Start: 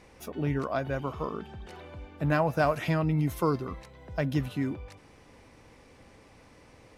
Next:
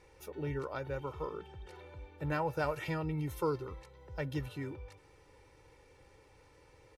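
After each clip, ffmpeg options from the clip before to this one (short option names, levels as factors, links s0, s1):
-af "aecho=1:1:2.2:0.76,volume=0.376"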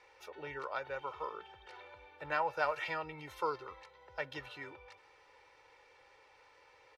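-filter_complex "[0:a]acrossover=split=560 5400:gain=0.0794 1 0.126[s0][s1][s2];[s0][s1][s2]amix=inputs=3:normalize=0,volume=1.58"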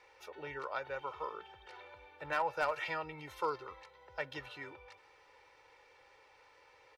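-af "asoftclip=type=hard:threshold=0.0562"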